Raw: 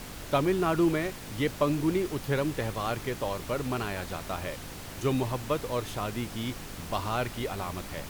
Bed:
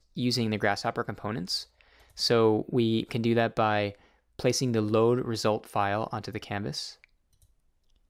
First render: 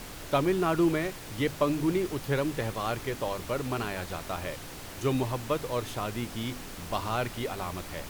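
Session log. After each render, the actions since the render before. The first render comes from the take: de-hum 50 Hz, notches 5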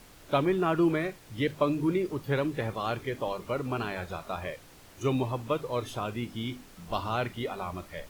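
noise print and reduce 11 dB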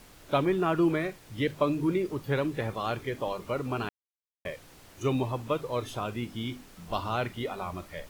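3.89–4.45 mute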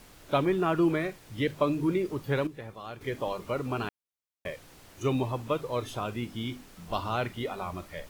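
2.47–3.01 gain -10 dB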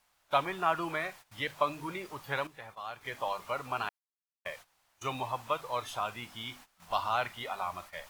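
gate -45 dBFS, range -17 dB; resonant low shelf 550 Hz -12.5 dB, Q 1.5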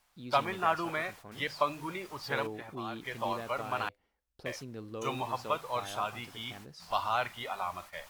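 add bed -17 dB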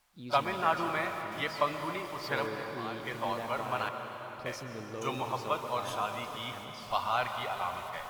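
reverse echo 33 ms -21.5 dB; plate-style reverb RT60 4.8 s, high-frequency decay 0.8×, pre-delay 0.11 s, DRR 5.5 dB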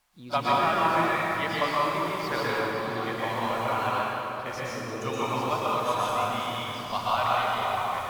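plate-style reverb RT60 1.8 s, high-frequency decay 0.75×, pre-delay 0.105 s, DRR -5.5 dB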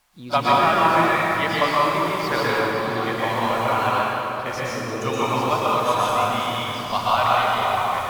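gain +6.5 dB

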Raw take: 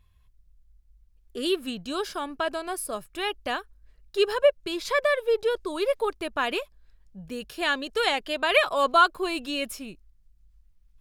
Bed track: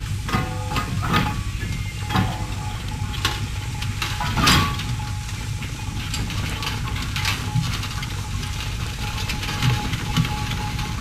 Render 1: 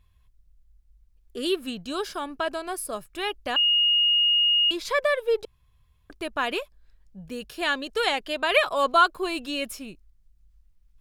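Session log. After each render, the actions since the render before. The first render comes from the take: 3.56–4.71 bleep 2860 Hz -17.5 dBFS; 5.45–6.1 room tone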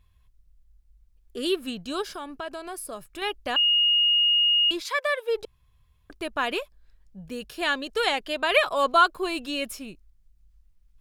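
2.02–3.22 compressor 2:1, threshold -35 dBFS; 4.8–5.35 HPF 1100 Hz -> 430 Hz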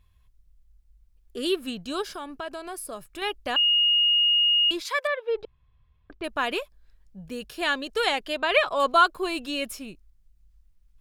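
5.07–6.24 air absorption 260 m; 8.37–8.8 air absorption 56 m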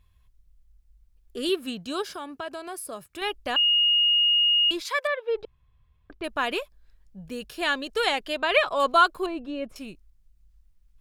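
1.49–3.21 HPF 60 Hz 24 dB/oct; 9.26–9.76 EQ curve 700 Hz 0 dB, 4600 Hz -18 dB, 12000 Hz -28 dB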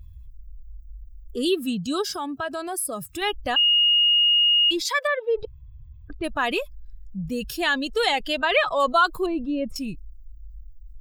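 per-bin expansion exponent 1.5; fast leveller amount 50%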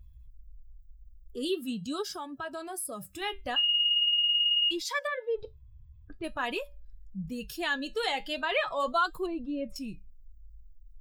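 flange 0.43 Hz, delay 4.8 ms, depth 7.4 ms, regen -63%; resonator 190 Hz, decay 0.31 s, harmonics odd, mix 40%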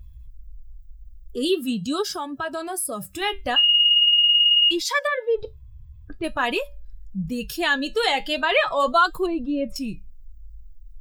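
gain +9 dB

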